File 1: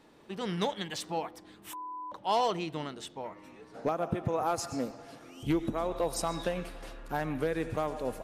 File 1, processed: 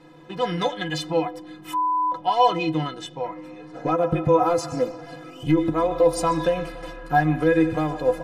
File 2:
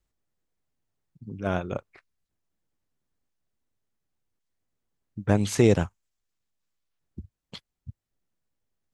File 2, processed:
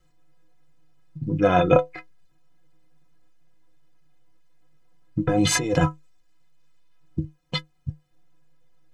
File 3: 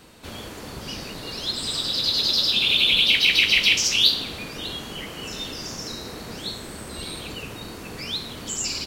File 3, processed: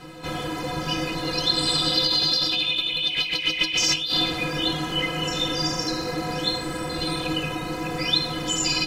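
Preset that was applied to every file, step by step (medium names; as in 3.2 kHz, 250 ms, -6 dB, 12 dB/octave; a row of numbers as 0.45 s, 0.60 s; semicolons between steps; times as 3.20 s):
low-pass 3 kHz 6 dB/octave; dynamic bell 140 Hz, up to -5 dB, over -46 dBFS, Q 2.3; compressor with a negative ratio -29 dBFS, ratio -1; inharmonic resonator 150 Hz, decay 0.22 s, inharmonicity 0.03; normalise loudness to -23 LUFS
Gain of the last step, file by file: +20.5 dB, +22.0 dB, +16.5 dB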